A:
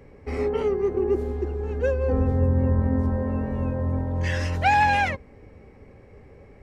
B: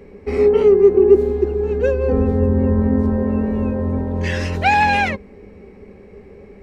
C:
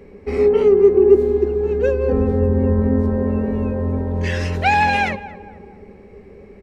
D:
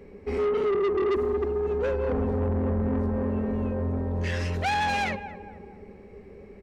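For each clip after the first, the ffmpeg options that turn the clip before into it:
-af "equalizer=f=125:t=o:w=0.33:g=-11,equalizer=f=200:t=o:w=0.33:g=12,equalizer=f=400:t=o:w=0.33:g=10,equalizer=f=2500:t=o:w=0.33:g=4,equalizer=f=4000:t=o:w=0.33:g=4,volume=1.5"
-filter_complex "[0:a]asplit=2[s0][s1];[s1]adelay=228,lowpass=f=1400:p=1,volume=0.188,asplit=2[s2][s3];[s3]adelay=228,lowpass=f=1400:p=1,volume=0.51,asplit=2[s4][s5];[s5]adelay=228,lowpass=f=1400:p=1,volume=0.51,asplit=2[s6][s7];[s7]adelay=228,lowpass=f=1400:p=1,volume=0.51,asplit=2[s8][s9];[s9]adelay=228,lowpass=f=1400:p=1,volume=0.51[s10];[s0][s2][s4][s6][s8][s10]amix=inputs=6:normalize=0,volume=0.891"
-af "asoftclip=type=tanh:threshold=0.133,volume=0.596"

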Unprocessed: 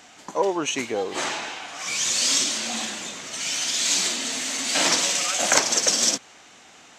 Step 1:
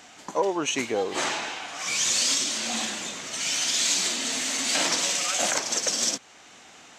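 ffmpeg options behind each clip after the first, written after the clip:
-af "alimiter=limit=0.224:level=0:latency=1:release=393"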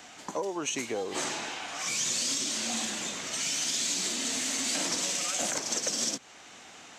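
-filter_complex "[0:a]acrossover=split=420|5400[s0][s1][s2];[s0]acompressor=threshold=0.0158:ratio=4[s3];[s1]acompressor=threshold=0.0178:ratio=4[s4];[s2]acompressor=threshold=0.0282:ratio=4[s5];[s3][s4][s5]amix=inputs=3:normalize=0"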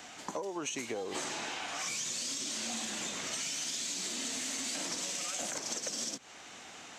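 -af "acompressor=threshold=0.02:ratio=6"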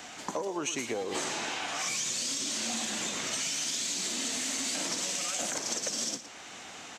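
-af "aecho=1:1:116:0.224,volume=1.58"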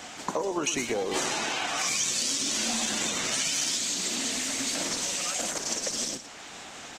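-af "volume=1.68" -ar 48000 -c:a libopus -b:a 16k

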